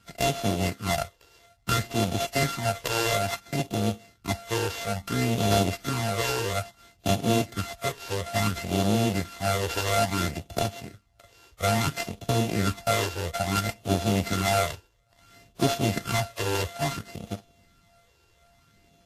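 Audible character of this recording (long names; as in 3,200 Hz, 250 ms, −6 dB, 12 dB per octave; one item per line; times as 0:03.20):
a buzz of ramps at a fixed pitch in blocks of 64 samples
phaser sweep stages 12, 0.59 Hz, lowest notch 210–1,900 Hz
aliases and images of a low sample rate 9,900 Hz, jitter 20%
Ogg Vorbis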